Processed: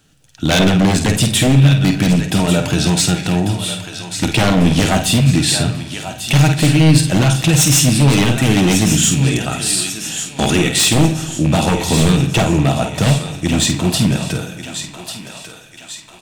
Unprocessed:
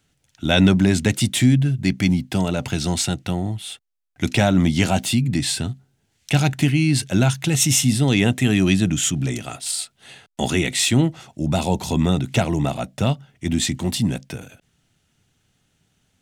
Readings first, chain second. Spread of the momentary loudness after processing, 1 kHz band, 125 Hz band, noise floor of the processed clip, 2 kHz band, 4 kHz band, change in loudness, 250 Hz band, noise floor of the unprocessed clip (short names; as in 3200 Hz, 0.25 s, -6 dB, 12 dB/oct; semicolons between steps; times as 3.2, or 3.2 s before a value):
14 LU, +7.0 dB, +6.5 dB, -40 dBFS, +6.0 dB, +7.5 dB, +6.0 dB, +5.0 dB, -68 dBFS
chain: rattling part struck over -22 dBFS, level -25 dBFS; notch 2100 Hz, Q 8.2; in parallel at +1 dB: compressor, threshold -28 dBFS, peak gain reduction 17 dB; on the sum: doubler 50 ms -7.5 dB; on a send: thinning echo 1.144 s, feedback 54%, high-pass 740 Hz, level -9 dB; on the sum: wavefolder -10 dBFS; shoebox room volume 1500 m³, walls mixed, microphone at 0.55 m; gain +3.5 dB